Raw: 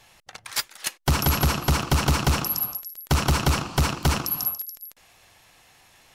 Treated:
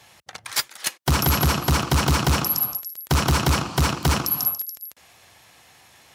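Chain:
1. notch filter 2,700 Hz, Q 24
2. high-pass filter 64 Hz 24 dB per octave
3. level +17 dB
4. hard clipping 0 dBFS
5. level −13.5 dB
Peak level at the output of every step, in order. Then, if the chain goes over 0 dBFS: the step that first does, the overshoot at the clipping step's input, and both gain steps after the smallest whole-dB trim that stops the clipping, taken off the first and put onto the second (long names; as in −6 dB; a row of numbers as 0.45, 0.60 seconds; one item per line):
−13.0, −8.5, +8.5, 0.0, −13.5 dBFS
step 3, 8.5 dB
step 3 +8 dB, step 5 −4.5 dB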